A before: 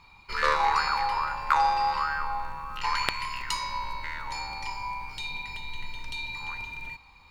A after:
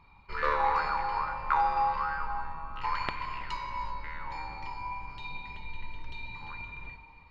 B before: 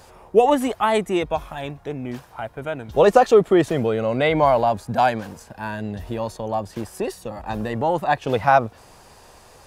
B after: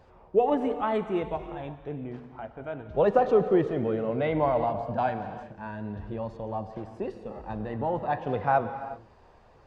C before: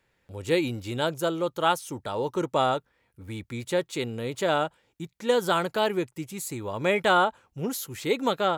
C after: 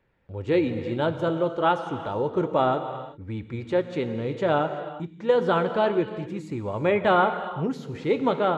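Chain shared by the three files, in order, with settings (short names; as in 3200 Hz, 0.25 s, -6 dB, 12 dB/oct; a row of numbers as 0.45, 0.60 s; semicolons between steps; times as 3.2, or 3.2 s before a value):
tape spacing loss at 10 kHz 32 dB; non-linear reverb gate 0.41 s flat, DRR 9 dB; flange 0.31 Hz, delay 0.3 ms, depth 8.2 ms, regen -75%; normalise peaks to -9 dBFS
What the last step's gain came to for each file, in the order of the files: +4.0, -2.0, +8.5 dB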